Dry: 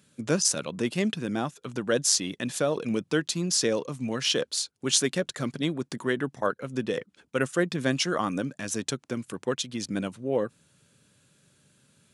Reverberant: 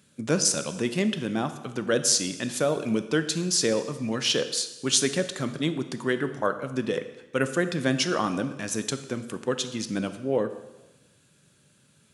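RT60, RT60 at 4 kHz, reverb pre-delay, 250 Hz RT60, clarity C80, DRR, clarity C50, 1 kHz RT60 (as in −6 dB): 1.1 s, 1.0 s, 8 ms, 1.2 s, 13.5 dB, 9.5 dB, 11.5 dB, 1.1 s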